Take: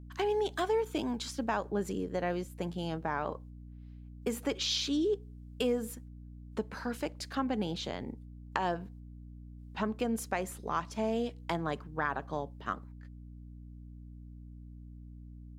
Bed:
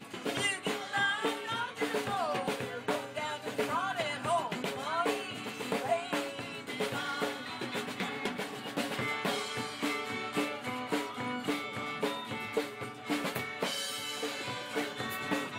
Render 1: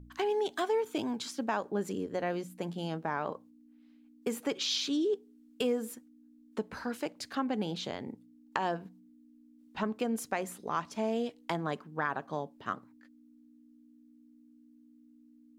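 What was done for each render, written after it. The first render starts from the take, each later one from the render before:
hum removal 60 Hz, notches 3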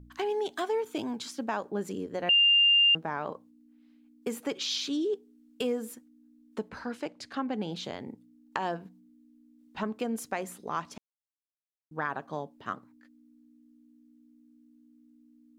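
0:02.29–0:02.95: beep over 2,800 Hz −18 dBFS
0:06.69–0:07.72: high-frequency loss of the air 52 metres
0:10.98–0:11.91: silence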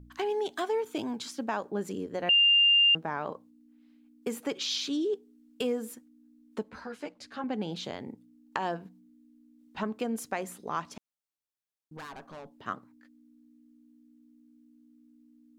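0:06.63–0:07.44: string-ensemble chorus
0:11.97–0:12.52: tube saturation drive 40 dB, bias 0.3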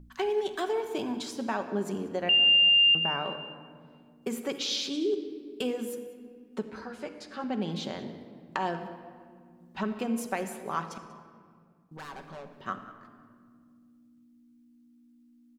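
single-tap delay 189 ms −20.5 dB
rectangular room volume 3,700 cubic metres, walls mixed, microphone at 1.1 metres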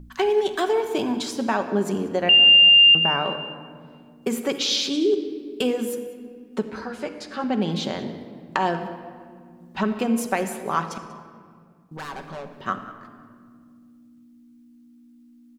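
level +8 dB

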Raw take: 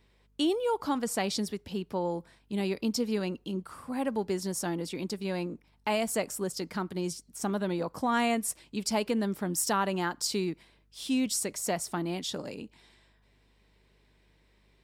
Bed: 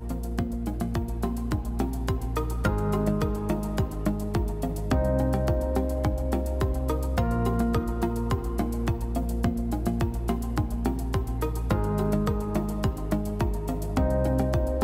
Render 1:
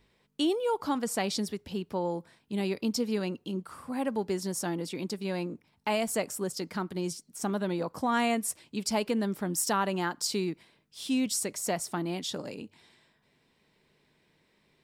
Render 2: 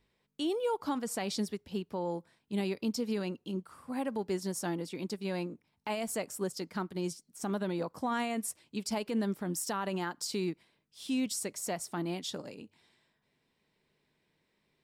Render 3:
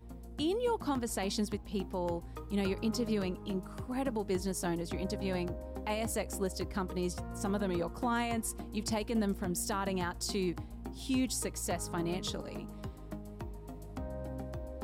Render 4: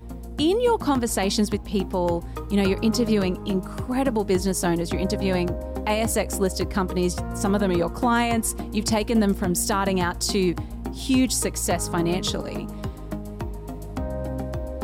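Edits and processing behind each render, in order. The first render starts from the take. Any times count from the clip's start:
hum removal 50 Hz, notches 2
brickwall limiter −23.5 dBFS, peak gain reduction 6 dB; expander for the loud parts 1.5 to 1, over −43 dBFS
mix in bed −16.5 dB
level +11.5 dB

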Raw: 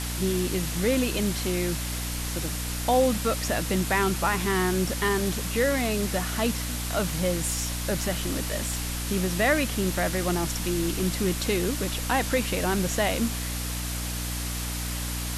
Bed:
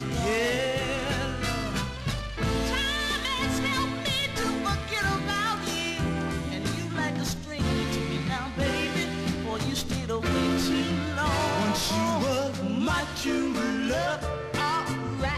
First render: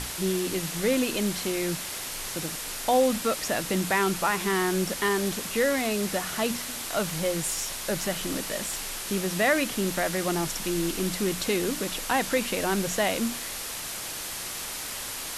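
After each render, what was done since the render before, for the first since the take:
mains-hum notches 60/120/180/240/300 Hz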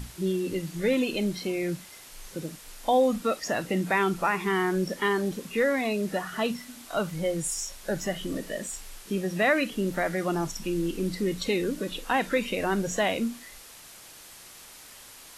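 noise reduction from a noise print 13 dB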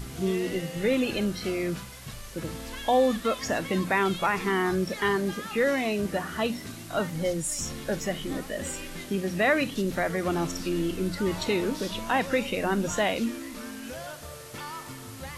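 mix in bed −12 dB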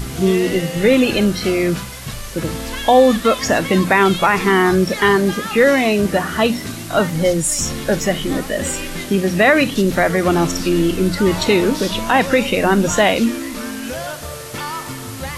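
level +12 dB
brickwall limiter −3 dBFS, peak gain reduction 3 dB

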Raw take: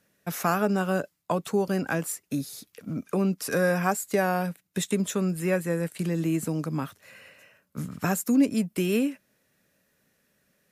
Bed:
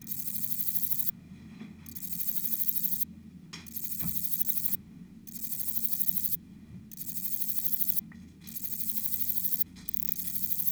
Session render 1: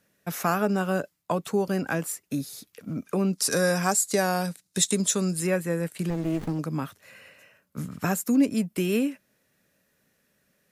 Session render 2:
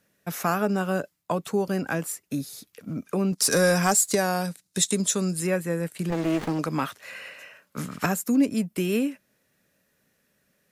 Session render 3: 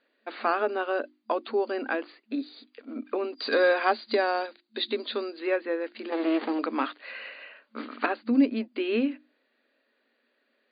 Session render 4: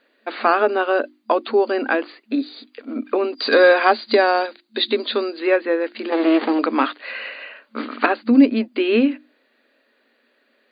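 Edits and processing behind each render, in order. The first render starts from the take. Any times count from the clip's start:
0:03.33–0:05.47: flat-topped bell 6,200 Hz +10.5 dB; 0:06.10–0:06.59: windowed peak hold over 33 samples
0:03.32–0:04.15: leveller curve on the samples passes 1; 0:06.12–0:08.06: mid-hump overdrive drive 16 dB, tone 5,800 Hz, clips at −11 dBFS
mains-hum notches 50/100/150/200/250/300/350 Hz; brick-wall band-pass 220–4,800 Hz
level +9.5 dB; brickwall limiter −3 dBFS, peak gain reduction 1.5 dB

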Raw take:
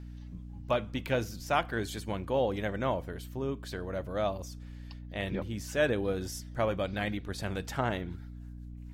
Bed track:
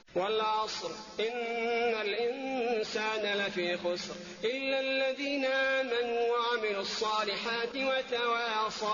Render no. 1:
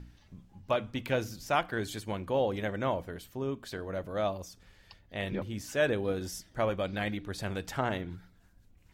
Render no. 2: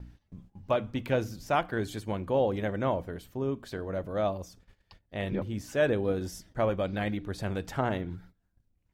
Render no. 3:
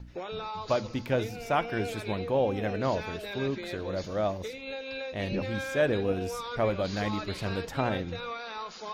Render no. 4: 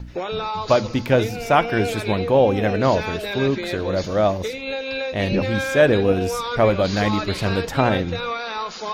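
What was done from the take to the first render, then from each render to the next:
hum removal 60 Hz, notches 5
noise gate −55 dBFS, range −16 dB; tilt shelving filter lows +3.5 dB, about 1,300 Hz
mix in bed track −7 dB
level +10.5 dB

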